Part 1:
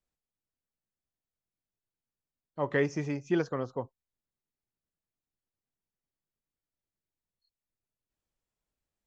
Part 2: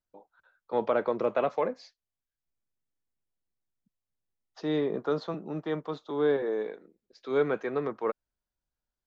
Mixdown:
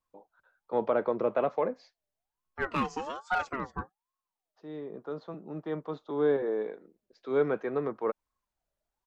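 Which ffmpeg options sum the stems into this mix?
ffmpeg -i stem1.wav -i stem2.wav -filter_complex "[0:a]aecho=1:1:5.3:0.55,volume=20.5dB,asoftclip=hard,volume=-20.5dB,aeval=exprs='val(0)*sin(2*PI*840*n/s+840*0.3/1.2*sin(2*PI*1.2*n/s))':channel_layout=same,volume=0dB,asplit=2[link_01][link_02];[1:a]highshelf=frequency=2500:gain=-10,volume=0dB[link_03];[link_02]apad=whole_len=399798[link_04];[link_03][link_04]sidechaincompress=threshold=-49dB:ratio=10:attack=11:release=1490[link_05];[link_01][link_05]amix=inputs=2:normalize=0" out.wav

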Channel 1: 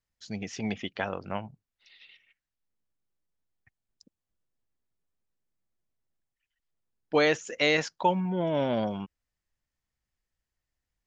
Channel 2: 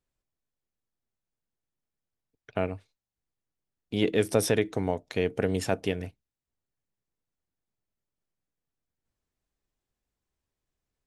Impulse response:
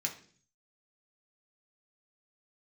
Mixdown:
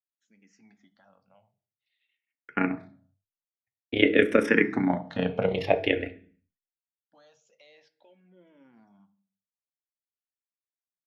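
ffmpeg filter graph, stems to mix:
-filter_complex "[0:a]highpass=frequency=350:poles=1,aemphasis=mode=reproduction:type=50fm,alimiter=limit=-23.5dB:level=0:latency=1:release=76,volume=-19dB,asplit=2[link_01][link_02];[link_02]volume=-5dB[link_03];[1:a]agate=range=-33dB:threshold=-48dB:ratio=3:detection=peak,firequalizer=gain_entry='entry(100,0);entry(300,10);entry(2100,14);entry(7100,-20)':delay=0.05:min_phase=1,tremolo=f=31:d=0.824,volume=2dB,asplit=2[link_04][link_05];[link_05]volume=-3.5dB[link_06];[2:a]atrim=start_sample=2205[link_07];[link_03][link_06]amix=inputs=2:normalize=0[link_08];[link_08][link_07]afir=irnorm=-1:irlink=0[link_09];[link_01][link_04][link_09]amix=inputs=3:normalize=0,equalizer=frequency=100:width_type=o:width=0.67:gain=4,equalizer=frequency=400:width_type=o:width=0.67:gain=-6,equalizer=frequency=1000:width_type=o:width=0.67:gain=-6,equalizer=frequency=2500:width_type=o:width=0.67:gain=-6,asplit=2[link_10][link_11];[link_11]afreqshift=-0.49[link_12];[link_10][link_12]amix=inputs=2:normalize=1"

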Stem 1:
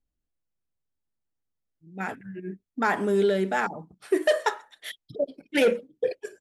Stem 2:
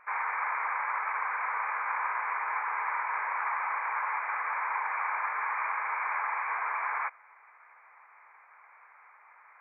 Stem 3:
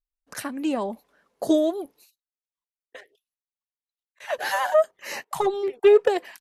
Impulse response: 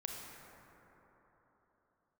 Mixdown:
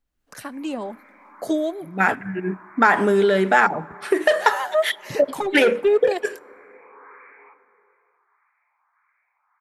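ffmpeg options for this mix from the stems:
-filter_complex "[0:a]acompressor=threshold=-25dB:ratio=6,equalizer=frequency=1400:width_type=o:width=2.3:gain=7.5,volume=1.5dB,asplit=2[link_01][link_02];[link_02]volume=-21dB[link_03];[1:a]highpass=790,alimiter=level_in=3dB:limit=-24dB:level=0:latency=1:release=15,volume=-3dB,asplit=2[link_04][link_05];[link_05]afreqshift=1.6[link_06];[link_04][link_06]amix=inputs=2:normalize=1,adelay=450,volume=-19dB,asplit=2[link_07][link_08];[link_08]volume=-6dB[link_09];[2:a]acrossover=split=410[link_10][link_11];[link_10]aeval=exprs='val(0)*(1-0.5/2+0.5/2*cos(2*PI*5.1*n/s))':channel_layout=same[link_12];[link_11]aeval=exprs='val(0)*(1-0.5/2-0.5/2*cos(2*PI*5.1*n/s))':channel_layout=same[link_13];[link_12][link_13]amix=inputs=2:normalize=0,volume=-7.5dB,asplit=3[link_14][link_15][link_16];[link_15]volume=-20dB[link_17];[link_16]apad=whole_len=443491[link_18];[link_07][link_18]sidechaincompress=threshold=-47dB:ratio=8:attack=16:release=600[link_19];[3:a]atrim=start_sample=2205[link_20];[link_03][link_09][link_17]amix=inputs=3:normalize=0[link_21];[link_21][link_20]afir=irnorm=-1:irlink=0[link_22];[link_01][link_19][link_14][link_22]amix=inputs=4:normalize=0,dynaudnorm=framelen=110:gausssize=3:maxgain=7dB"

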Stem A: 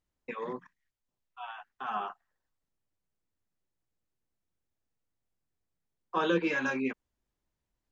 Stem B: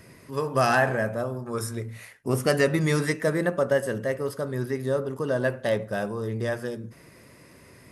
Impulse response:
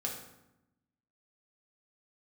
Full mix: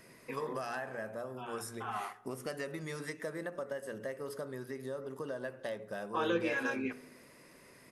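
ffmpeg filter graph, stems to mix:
-filter_complex "[0:a]volume=-6dB,asplit=2[link_01][link_02];[link_02]volume=-11.5dB[link_03];[1:a]bandreject=frequency=60:width_type=h:width=6,bandreject=frequency=120:width_type=h:width=6,bandreject=frequency=180:width_type=h:width=6,bandreject=frequency=240:width_type=h:width=6,bandreject=frequency=300:width_type=h:width=6,bandreject=frequency=360:width_type=h:width=6,bandreject=frequency=420:width_type=h:width=6,acompressor=threshold=-31dB:ratio=6,volume=-5dB,asplit=2[link_04][link_05];[link_05]volume=-23.5dB[link_06];[2:a]atrim=start_sample=2205[link_07];[link_03][link_07]afir=irnorm=-1:irlink=0[link_08];[link_06]aecho=0:1:305:1[link_09];[link_01][link_04][link_08][link_09]amix=inputs=4:normalize=0,equalizer=frequency=82:width=0.94:gain=-13"

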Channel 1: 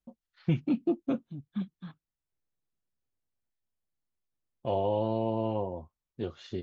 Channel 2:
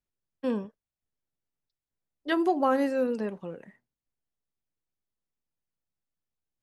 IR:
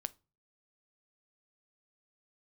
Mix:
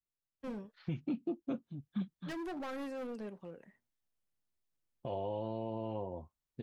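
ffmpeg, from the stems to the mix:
-filter_complex "[0:a]adelay=400,volume=-1.5dB[link_01];[1:a]adynamicequalizer=threshold=0.0158:dfrequency=890:dqfactor=0.74:tfrequency=890:tqfactor=0.74:attack=5:release=100:ratio=0.375:range=2:mode=cutabove:tftype=bell,asoftclip=type=hard:threshold=-29dB,volume=-9.5dB[link_02];[link_01][link_02]amix=inputs=2:normalize=0,alimiter=level_in=4dB:limit=-24dB:level=0:latency=1:release=380,volume=-4dB"

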